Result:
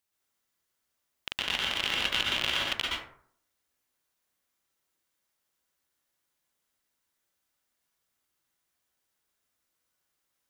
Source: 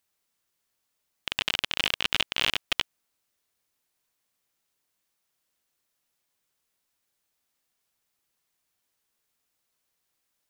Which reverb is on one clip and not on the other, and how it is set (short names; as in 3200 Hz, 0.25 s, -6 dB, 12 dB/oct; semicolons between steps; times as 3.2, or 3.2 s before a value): plate-style reverb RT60 0.57 s, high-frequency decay 0.45×, pre-delay 0.11 s, DRR -3.5 dB; gain -5.5 dB